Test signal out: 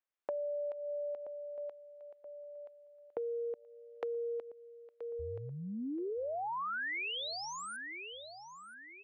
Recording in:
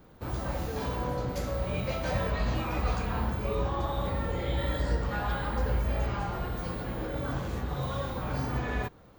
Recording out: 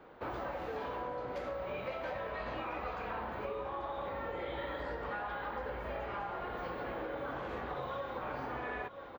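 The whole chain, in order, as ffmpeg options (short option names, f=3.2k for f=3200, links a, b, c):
-filter_complex "[0:a]acrossover=split=330 3200:gain=0.141 1 0.0631[a][b][c];[a][b][c]amix=inputs=3:normalize=0,aecho=1:1:977|1954|2931:0.158|0.0602|0.0229,acompressor=threshold=-41dB:ratio=10,volume=5dB"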